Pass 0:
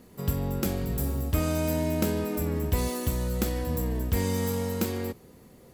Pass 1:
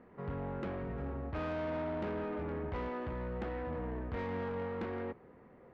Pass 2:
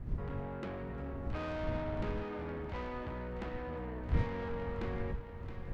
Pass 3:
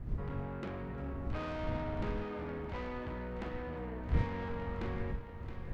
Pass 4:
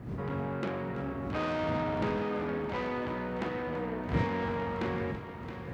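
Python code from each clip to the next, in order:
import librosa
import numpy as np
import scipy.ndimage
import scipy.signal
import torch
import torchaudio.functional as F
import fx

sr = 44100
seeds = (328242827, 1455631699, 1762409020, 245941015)

y1 = scipy.signal.sosfilt(scipy.signal.butter(4, 1900.0, 'lowpass', fs=sr, output='sos'), x)
y1 = fx.low_shelf(y1, sr, hz=330.0, db=-11.5)
y1 = 10.0 ** (-34.5 / 20.0) * np.tanh(y1 / 10.0 ** (-34.5 / 20.0))
y1 = y1 * librosa.db_to_amplitude(1.0)
y2 = fx.dmg_wind(y1, sr, seeds[0], corner_hz=89.0, level_db=-38.0)
y2 = fx.high_shelf(y2, sr, hz=3700.0, db=10.0)
y2 = fx.echo_thinned(y2, sr, ms=671, feedback_pct=55, hz=420.0, wet_db=-9.5)
y2 = y2 * librosa.db_to_amplitude(-2.5)
y3 = fx.doubler(y2, sr, ms=44.0, db=-11.0)
y4 = scipy.signal.sosfilt(scipy.signal.butter(2, 140.0, 'highpass', fs=sr, output='sos'), y3)
y4 = y4 + 10.0 ** (-14.5 / 20.0) * np.pad(y4, (int(333 * sr / 1000.0), 0))[:len(y4)]
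y4 = y4 * librosa.db_to_amplitude(8.0)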